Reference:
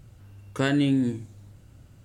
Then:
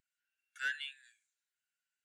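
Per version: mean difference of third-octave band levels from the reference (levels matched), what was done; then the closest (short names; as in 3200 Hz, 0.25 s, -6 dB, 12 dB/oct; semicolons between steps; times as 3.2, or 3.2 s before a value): 10.0 dB: Chebyshev high-pass 1400 Hz, order 8; hard clip -30 dBFS, distortion -9 dB; spectral expander 1.5:1; gain +2.5 dB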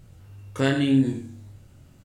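1.5 dB: doubler 22 ms -4 dB; de-hum 46.89 Hz, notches 37; on a send: echo 89 ms -10.5 dB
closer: second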